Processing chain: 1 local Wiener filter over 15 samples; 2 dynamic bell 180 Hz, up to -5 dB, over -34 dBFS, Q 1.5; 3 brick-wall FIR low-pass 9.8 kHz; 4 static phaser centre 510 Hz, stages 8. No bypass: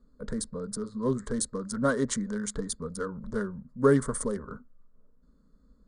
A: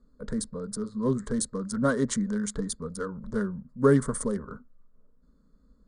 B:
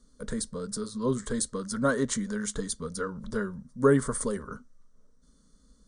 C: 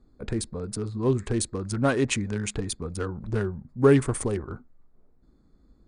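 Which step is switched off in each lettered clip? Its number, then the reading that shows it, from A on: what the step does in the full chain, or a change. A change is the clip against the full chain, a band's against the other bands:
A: 2, 125 Hz band +3.0 dB; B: 1, 4 kHz band +2.0 dB; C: 4, 125 Hz band +5.0 dB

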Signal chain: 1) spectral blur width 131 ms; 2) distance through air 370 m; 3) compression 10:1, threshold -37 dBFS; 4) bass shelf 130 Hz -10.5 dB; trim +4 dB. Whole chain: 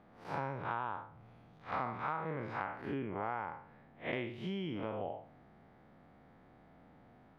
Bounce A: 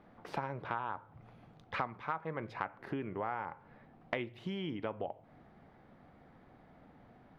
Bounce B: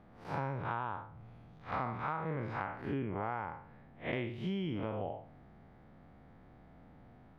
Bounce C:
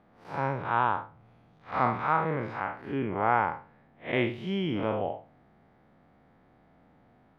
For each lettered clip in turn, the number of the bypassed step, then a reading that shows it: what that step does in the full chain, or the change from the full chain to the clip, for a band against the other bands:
1, 4 kHz band +1.5 dB; 4, 125 Hz band +5.0 dB; 3, mean gain reduction 5.0 dB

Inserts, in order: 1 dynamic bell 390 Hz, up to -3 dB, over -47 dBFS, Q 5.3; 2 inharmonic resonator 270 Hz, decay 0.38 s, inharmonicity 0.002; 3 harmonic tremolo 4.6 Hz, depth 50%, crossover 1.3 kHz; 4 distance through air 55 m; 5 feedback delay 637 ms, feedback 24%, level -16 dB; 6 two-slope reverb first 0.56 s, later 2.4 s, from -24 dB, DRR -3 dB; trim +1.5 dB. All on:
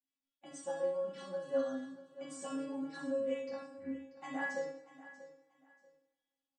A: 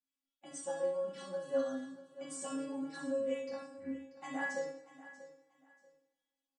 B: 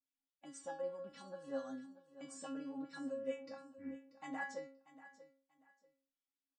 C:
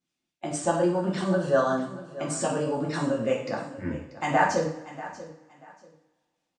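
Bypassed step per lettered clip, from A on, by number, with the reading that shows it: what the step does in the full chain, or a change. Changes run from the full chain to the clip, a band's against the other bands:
4, 8 kHz band +5.0 dB; 6, loudness change -7.0 LU; 2, 125 Hz band +15.0 dB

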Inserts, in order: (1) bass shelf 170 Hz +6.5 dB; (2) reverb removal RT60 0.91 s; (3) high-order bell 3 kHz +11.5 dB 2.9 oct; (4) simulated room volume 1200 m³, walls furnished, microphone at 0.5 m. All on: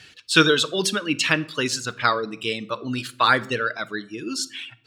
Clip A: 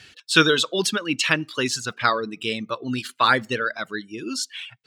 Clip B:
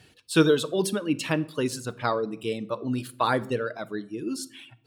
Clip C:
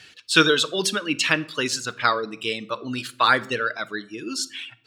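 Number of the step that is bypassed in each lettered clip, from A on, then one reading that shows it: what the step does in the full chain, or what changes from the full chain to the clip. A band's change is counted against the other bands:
4, echo-to-direct -13.5 dB to none; 3, 4 kHz band -8.5 dB; 1, 125 Hz band -3.5 dB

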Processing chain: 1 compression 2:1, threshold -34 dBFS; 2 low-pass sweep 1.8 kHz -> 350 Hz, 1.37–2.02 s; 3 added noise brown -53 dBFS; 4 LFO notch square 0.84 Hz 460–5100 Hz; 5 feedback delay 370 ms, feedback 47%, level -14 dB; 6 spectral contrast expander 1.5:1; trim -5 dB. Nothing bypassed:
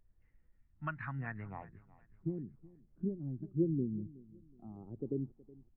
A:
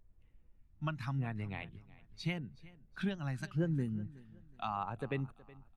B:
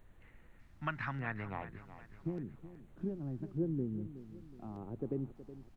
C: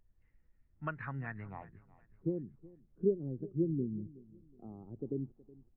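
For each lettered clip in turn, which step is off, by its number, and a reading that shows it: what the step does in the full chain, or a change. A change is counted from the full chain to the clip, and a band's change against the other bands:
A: 2, 1 kHz band +6.5 dB; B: 6, 1 kHz band +4.0 dB; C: 4, 500 Hz band +5.5 dB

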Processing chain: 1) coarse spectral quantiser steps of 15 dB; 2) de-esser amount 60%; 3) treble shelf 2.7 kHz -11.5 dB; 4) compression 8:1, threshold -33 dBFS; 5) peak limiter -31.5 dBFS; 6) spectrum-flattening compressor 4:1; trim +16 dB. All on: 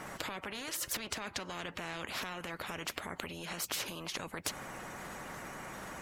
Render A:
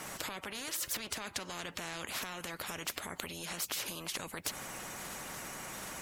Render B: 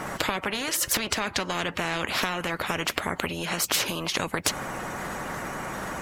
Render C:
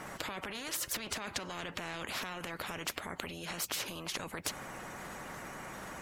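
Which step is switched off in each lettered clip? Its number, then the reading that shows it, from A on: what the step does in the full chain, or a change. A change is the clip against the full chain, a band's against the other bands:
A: 3, 8 kHz band +4.0 dB; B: 5, loudness change +12.0 LU; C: 4, mean gain reduction 6.0 dB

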